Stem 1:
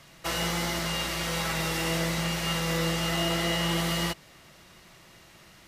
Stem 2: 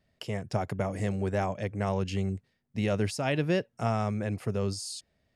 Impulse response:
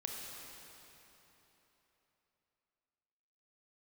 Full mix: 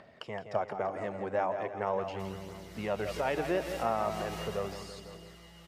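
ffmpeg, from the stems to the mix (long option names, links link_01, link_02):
-filter_complex "[0:a]acrossover=split=210|1300[link_01][link_02][link_03];[link_01]acompressor=threshold=-38dB:ratio=4[link_04];[link_02]acompressor=threshold=-43dB:ratio=4[link_05];[link_03]acompressor=threshold=-40dB:ratio=4[link_06];[link_04][link_05][link_06]amix=inputs=3:normalize=0,adelay=1950,volume=-6.5dB,afade=type=in:start_time=2.7:duration=0.49:silence=0.316228,afade=type=out:start_time=4.47:duration=0.47:silence=0.237137,asplit=2[link_07][link_08];[link_08]volume=-13dB[link_09];[1:a]acompressor=mode=upward:threshold=-34dB:ratio=2.5,bandpass=frequency=890:width_type=q:width=0.97:csg=0,volume=1dB,asplit=4[link_10][link_11][link_12][link_13];[link_11]volume=-17.5dB[link_14];[link_12]volume=-8.5dB[link_15];[link_13]apad=whole_len=336389[link_16];[link_07][link_16]sidechaincompress=threshold=-35dB:ratio=8:attack=16:release=137[link_17];[2:a]atrim=start_sample=2205[link_18];[link_14][link_18]afir=irnorm=-1:irlink=0[link_19];[link_09][link_15]amix=inputs=2:normalize=0,aecho=0:1:168|336|504|672|840|1008|1176|1344|1512:1|0.57|0.325|0.185|0.106|0.0602|0.0343|0.0195|0.0111[link_20];[link_17][link_10][link_19][link_20]amix=inputs=4:normalize=0,aphaser=in_gain=1:out_gain=1:delay=3.9:decay=0.3:speed=0.39:type=triangular"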